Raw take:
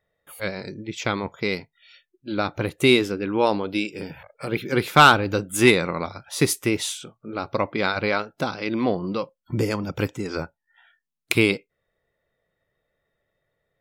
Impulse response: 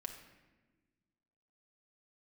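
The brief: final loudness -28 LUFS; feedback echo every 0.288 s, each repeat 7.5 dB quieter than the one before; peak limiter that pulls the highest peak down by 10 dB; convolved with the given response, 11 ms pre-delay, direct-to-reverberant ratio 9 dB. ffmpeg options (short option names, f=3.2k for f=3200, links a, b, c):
-filter_complex "[0:a]alimiter=limit=-13.5dB:level=0:latency=1,aecho=1:1:288|576|864|1152|1440:0.422|0.177|0.0744|0.0312|0.0131,asplit=2[a][b];[1:a]atrim=start_sample=2205,adelay=11[c];[b][c]afir=irnorm=-1:irlink=0,volume=-6.5dB[d];[a][d]amix=inputs=2:normalize=0,volume=-1.5dB"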